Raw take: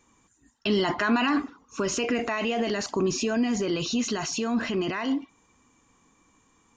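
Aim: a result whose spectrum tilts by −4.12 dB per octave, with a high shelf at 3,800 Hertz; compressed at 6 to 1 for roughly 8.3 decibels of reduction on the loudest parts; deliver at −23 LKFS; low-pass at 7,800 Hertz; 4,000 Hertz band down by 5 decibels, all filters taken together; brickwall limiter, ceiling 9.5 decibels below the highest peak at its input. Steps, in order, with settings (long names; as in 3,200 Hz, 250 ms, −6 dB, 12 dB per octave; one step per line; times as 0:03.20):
low-pass filter 7,800 Hz
high-shelf EQ 3,800 Hz −5.5 dB
parametric band 4,000 Hz −3.5 dB
downward compressor 6 to 1, threshold −29 dBFS
level +14 dB
brickwall limiter −14.5 dBFS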